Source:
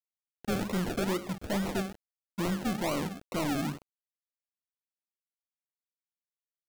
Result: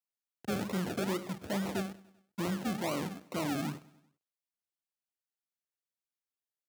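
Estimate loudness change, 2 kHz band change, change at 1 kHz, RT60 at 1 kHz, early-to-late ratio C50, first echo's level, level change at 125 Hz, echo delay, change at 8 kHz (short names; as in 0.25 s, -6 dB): -3.0 dB, -3.0 dB, -3.0 dB, none, none, -22.5 dB, -3.0 dB, 98 ms, -3.0 dB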